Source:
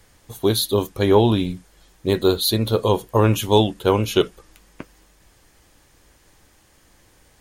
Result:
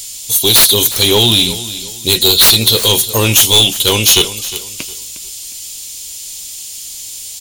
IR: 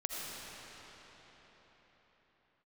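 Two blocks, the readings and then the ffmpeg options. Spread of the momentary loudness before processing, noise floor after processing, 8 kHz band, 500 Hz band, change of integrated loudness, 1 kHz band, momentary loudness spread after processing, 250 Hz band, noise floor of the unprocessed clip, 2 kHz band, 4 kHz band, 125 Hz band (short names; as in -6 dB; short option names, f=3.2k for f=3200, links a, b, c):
8 LU, -29 dBFS, +21.5 dB, +0.5 dB, +10.5 dB, +1.5 dB, 19 LU, +0.5 dB, -56 dBFS, +14.0 dB, +18.0 dB, +2.5 dB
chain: -filter_complex "[0:a]aexciter=amount=7.9:drive=9.8:freq=2.6k,aeval=exprs='val(0)+0.0158*sin(2*PI*7200*n/s)':c=same,acontrast=87,asplit=2[a][b];[b]aecho=0:1:358|716|1074:0.178|0.0533|0.016[c];[a][c]amix=inputs=2:normalize=0,volume=-3dB"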